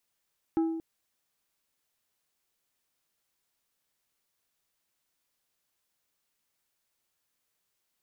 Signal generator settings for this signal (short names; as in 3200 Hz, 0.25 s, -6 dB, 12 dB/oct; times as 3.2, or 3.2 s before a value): glass hit plate, length 0.23 s, lowest mode 326 Hz, decay 1.07 s, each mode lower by 12 dB, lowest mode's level -21.5 dB